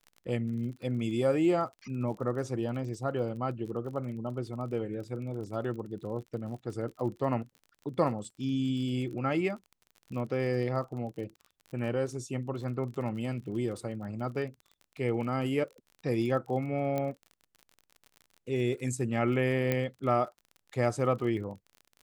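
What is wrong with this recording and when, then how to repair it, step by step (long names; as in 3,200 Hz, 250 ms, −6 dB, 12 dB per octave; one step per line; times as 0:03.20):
surface crackle 34 per second −40 dBFS
0:16.98: click −19 dBFS
0:19.72: click −15 dBFS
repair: click removal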